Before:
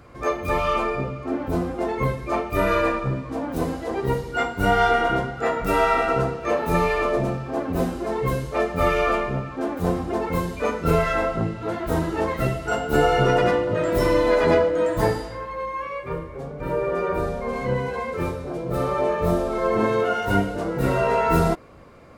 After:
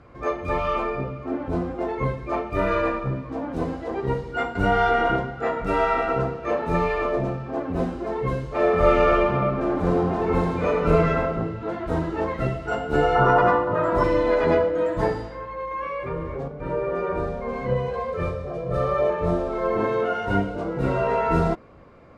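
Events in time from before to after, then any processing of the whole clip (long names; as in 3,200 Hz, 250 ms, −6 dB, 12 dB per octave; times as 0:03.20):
0:04.55–0:05.16: envelope flattener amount 50%
0:08.48–0:10.92: thrown reverb, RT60 1.7 s, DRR −2.5 dB
0:13.15–0:14.04: drawn EQ curve 510 Hz 0 dB, 1,100 Hz +13 dB, 2,200 Hz −3 dB
0:15.71–0:16.48: envelope flattener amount 70%
0:17.70–0:19.10: comb filter 1.7 ms
0:20.42–0:21.08: notch filter 1,800 Hz, Q 9.9
whole clip: low-pass filter 8,000 Hz 12 dB per octave; high-shelf EQ 4,300 Hz −11.5 dB; hum removal 109.5 Hz, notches 2; level −1.5 dB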